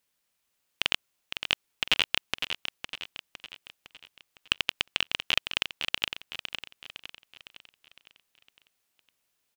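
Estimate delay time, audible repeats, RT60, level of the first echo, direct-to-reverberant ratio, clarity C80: 508 ms, 5, no reverb, -8.0 dB, no reverb, no reverb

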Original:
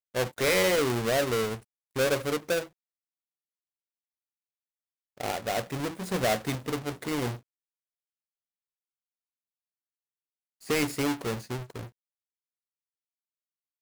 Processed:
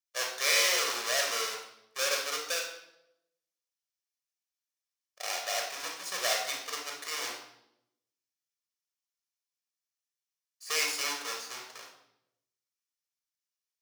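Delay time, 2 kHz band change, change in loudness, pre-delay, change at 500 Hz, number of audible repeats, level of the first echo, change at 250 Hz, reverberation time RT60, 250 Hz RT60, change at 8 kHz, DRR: no echo, +0.5 dB, -1.5 dB, 23 ms, -10.0 dB, no echo, no echo, -22.5 dB, 0.80 s, 1.0 s, +5.5 dB, 1.0 dB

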